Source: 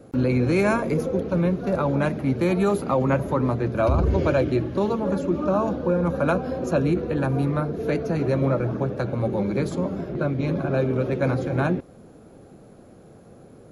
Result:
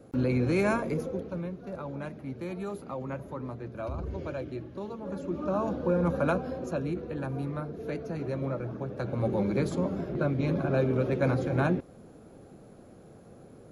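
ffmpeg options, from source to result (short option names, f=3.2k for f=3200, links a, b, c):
-af "volume=13dB,afade=t=out:st=0.72:d=0.77:silence=0.334965,afade=t=in:st=4.97:d=1.1:silence=0.266073,afade=t=out:st=6.07:d=0.72:silence=0.446684,afade=t=in:st=8.86:d=0.43:silence=0.446684"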